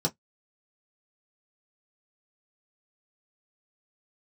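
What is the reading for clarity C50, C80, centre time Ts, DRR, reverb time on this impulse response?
30.5 dB, 47.5 dB, 8 ms, -2.5 dB, 0.10 s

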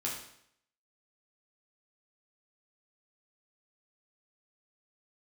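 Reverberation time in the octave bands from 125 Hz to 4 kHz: 0.70, 0.70, 0.70, 0.70, 0.70, 0.65 s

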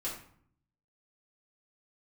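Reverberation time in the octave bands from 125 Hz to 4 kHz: 1.0, 0.85, 0.55, 0.60, 0.50, 0.40 s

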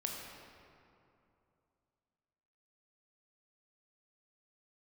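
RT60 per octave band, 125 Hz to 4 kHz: 3.1, 2.9, 2.8, 2.7, 2.1, 1.5 s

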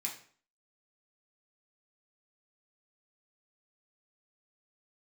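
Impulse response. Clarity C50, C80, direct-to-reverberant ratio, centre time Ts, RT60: 8.5 dB, 12.5 dB, -2.0 dB, 21 ms, 0.50 s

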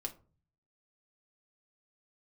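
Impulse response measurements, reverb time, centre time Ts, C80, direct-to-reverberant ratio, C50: 0.40 s, 7 ms, 21.5 dB, 2.0 dB, 16.5 dB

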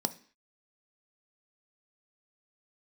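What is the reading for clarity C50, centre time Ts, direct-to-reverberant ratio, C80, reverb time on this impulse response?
17.5 dB, 4 ms, 10.5 dB, 22.5 dB, 0.45 s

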